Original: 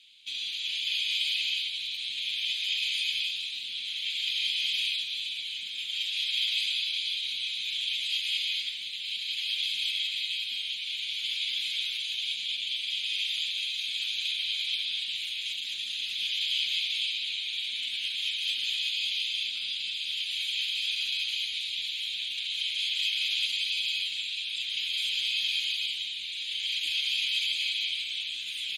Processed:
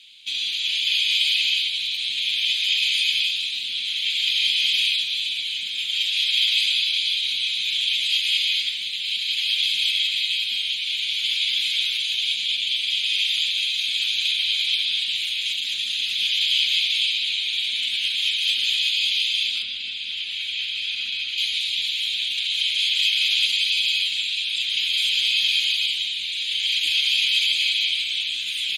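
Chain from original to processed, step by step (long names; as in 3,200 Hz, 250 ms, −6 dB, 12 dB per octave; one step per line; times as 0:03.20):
0:19.62–0:21.38: low-pass filter 2,100 Hz 6 dB per octave
level +8.5 dB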